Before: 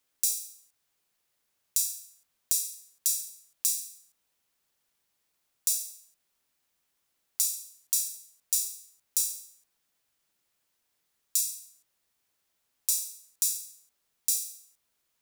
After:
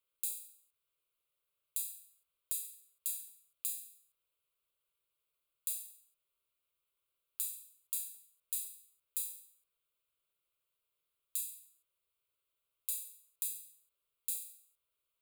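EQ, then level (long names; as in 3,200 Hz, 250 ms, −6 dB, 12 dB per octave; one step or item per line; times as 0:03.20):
phaser with its sweep stopped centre 1,200 Hz, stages 8
−7.0 dB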